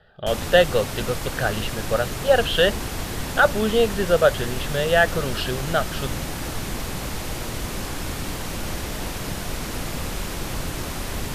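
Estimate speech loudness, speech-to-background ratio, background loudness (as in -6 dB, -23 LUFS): -22.0 LUFS, 8.0 dB, -30.0 LUFS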